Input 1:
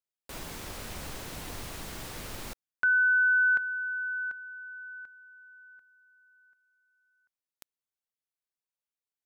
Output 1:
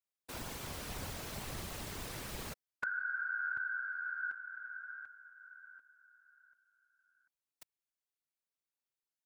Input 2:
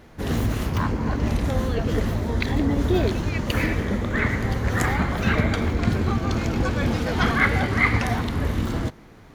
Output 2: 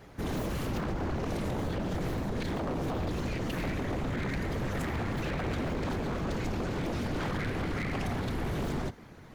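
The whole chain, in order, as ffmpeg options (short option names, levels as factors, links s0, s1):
-filter_complex "[0:a]acrossover=split=290[s0][s1];[s1]acompressor=threshold=0.0178:ratio=6:attack=6.9:release=45:knee=2.83:detection=peak[s2];[s0][s2]amix=inputs=2:normalize=0,afftfilt=real='hypot(re,im)*cos(2*PI*random(0))':imag='hypot(re,im)*sin(2*PI*random(1))':win_size=512:overlap=0.75,aeval=exprs='0.0316*(abs(mod(val(0)/0.0316+3,4)-2)-1)':c=same,volume=1.41"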